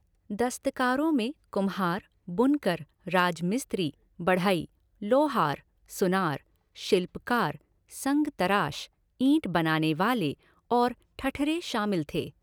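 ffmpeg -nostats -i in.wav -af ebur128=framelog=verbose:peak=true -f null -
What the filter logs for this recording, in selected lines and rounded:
Integrated loudness:
  I:         -28.0 LUFS
  Threshold: -38.4 LUFS
Loudness range:
  LRA:         1.5 LU
  Threshold: -48.3 LUFS
  LRA low:   -29.1 LUFS
  LRA high:  -27.6 LUFS
True peak:
  Peak:      -11.1 dBFS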